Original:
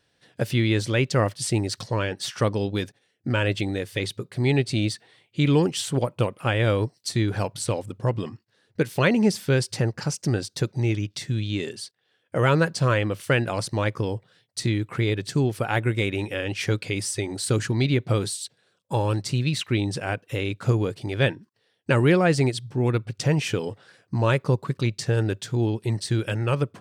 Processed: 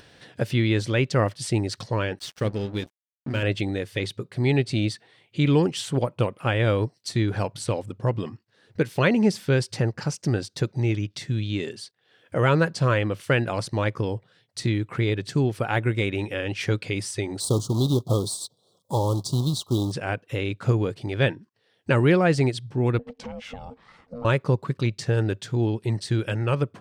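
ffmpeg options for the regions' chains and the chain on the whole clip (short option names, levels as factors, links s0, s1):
-filter_complex "[0:a]asettb=1/sr,asplit=3[s0][s1][s2];[s0]atrim=end=2.194[s3];[s1]atrim=start=2.19:end=3.43,asetpts=PTS-STARTPTS,afade=t=in:d=0.004:c=qsin,afade=t=out:st=1.236:d=0.004:c=qsin,equalizer=f=980:t=o:w=1:g=-10.5,bandreject=f=60:t=h:w=6,bandreject=f=120:t=h:w=6,bandreject=f=180:t=h:w=6,bandreject=f=240:t=h:w=6,bandreject=f=300:t=h:w=6,bandreject=f=360:t=h:w=6,aeval=exprs='sgn(val(0))*max(abs(val(0))-0.0112,0)':c=same[s4];[s2]atrim=start=3.426[s5];[s3][s4]acrossfade=d=0.004:c1=hsin:c2=qsin[s6];[s6][s5]acrossfade=d=0.004:c1=qsin:c2=hsin,asettb=1/sr,asplit=3[s7][s8][s9];[s7]atrim=end=17.404[s10];[s8]atrim=start=17.4:end=19.92,asetpts=PTS-STARTPTS,afade=t=in:d=0.004:c=qsin,afade=t=out:st=2.516:d=0.004:c=qsin,highshelf=f=8700:g=10.5,acrusher=bits=3:mode=log:mix=0:aa=0.000001,asuperstop=centerf=2000:order=12:qfactor=0.93[s11];[s9]atrim=start=19.916[s12];[s10][s11]acrossfade=d=0.004:c1=hsin:c2=qsin[s13];[s13][s12]acrossfade=d=0.004:c1=qsin:c2=hsin,asettb=1/sr,asplit=3[s14][s15][s16];[s14]atrim=end=22.994[s17];[s15]atrim=start=22.99:end=24.25,asetpts=PTS-STARTPTS,afade=t=in:d=0.004:c=qsin,afade=t=out:st=1.256:d=0.004:c=qsin,highshelf=f=5500:g=-10,acompressor=threshold=0.0251:ratio=4:attack=3.2:release=140:knee=1:detection=peak,aeval=exprs='val(0)*sin(2*PI*360*n/s)':c=same[s18];[s16]atrim=start=24.246[s19];[s17][s18]acrossfade=d=0.004:c1=hsin:c2=qsin[s20];[s20][s19]acrossfade=d=0.004:c1=qsin:c2=hsin,highshelf=f=6600:g=-8,acompressor=mode=upward:threshold=0.0126:ratio=2.5"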